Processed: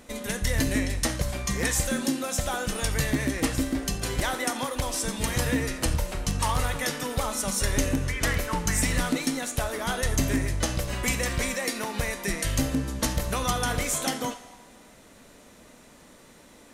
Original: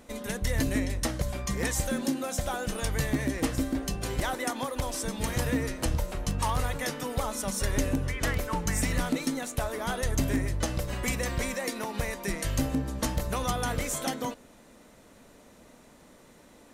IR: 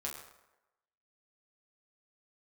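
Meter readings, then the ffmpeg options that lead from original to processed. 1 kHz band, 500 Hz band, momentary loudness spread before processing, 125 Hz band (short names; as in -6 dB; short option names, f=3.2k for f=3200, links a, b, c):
+2.5 dB, +1.5 dB, 4 LU, +2.0 dB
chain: -filter_complex "[0:a]asplit=2[a][b];[b]highpass=1.2k[c];[1:a]atrim=start_sample=2205,asetrate=24255,aresample=44100[d];[c][d]afir=irnorm=-1:irlink=0,volume=-7dB[e];[a][e]amix=inputs=2:normalize=0,volume=2dB"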